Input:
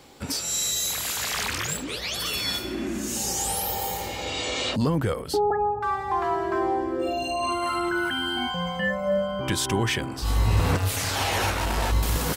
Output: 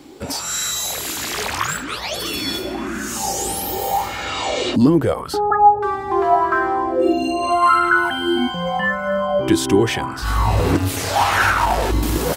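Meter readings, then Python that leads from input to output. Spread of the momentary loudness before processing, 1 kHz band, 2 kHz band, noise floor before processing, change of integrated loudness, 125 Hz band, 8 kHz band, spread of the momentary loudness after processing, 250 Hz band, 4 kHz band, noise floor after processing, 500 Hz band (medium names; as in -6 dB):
5 LU, +10.0 dB, +8.0 dB, -33 dBFS, +7.0 dB, +3.0 dB, +2.5 dB, 9 LU, +9.5 dB, +3.0 dB, -29 dBFS, +7.0 dB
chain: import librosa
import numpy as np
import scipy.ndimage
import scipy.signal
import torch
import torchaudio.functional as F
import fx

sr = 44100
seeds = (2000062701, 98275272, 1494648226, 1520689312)

y = fx.peak_eq(x, sr, hz=490.0, db=-5.0, octaves=0.39)
y = fx.bell_lfo(y, sr, hz=0.83, low_hz=290.0, high_hz=1500.0, db=16)
y = y * 10.0 ** (2.5 / 20.0)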